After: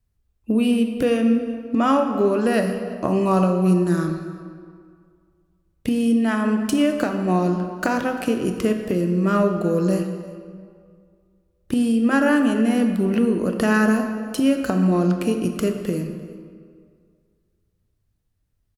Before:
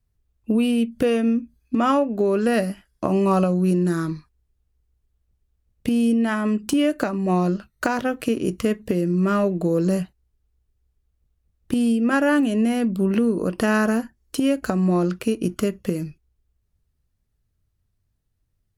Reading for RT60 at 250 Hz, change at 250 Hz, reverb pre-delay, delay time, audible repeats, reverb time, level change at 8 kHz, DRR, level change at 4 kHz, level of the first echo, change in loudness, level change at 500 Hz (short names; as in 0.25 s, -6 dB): 2.0 s, +1.5 dB, 22 ms, 0.345 s, 1, 2.1 s, +0.5 dB, 5.5 dB, +0.5 dB, -21.0 dB, +1.0 dB, +1.0 dB